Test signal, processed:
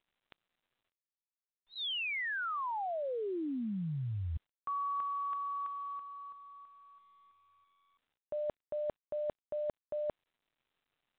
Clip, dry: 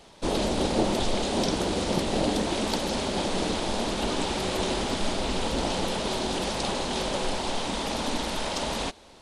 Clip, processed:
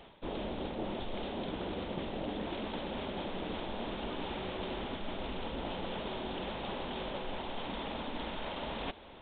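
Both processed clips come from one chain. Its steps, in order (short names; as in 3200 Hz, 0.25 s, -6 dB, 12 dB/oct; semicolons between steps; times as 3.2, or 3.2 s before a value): reverse; compressor 5:1, threshold -36 dBFS; reverse; µ-law 64 kbps 8000 Hz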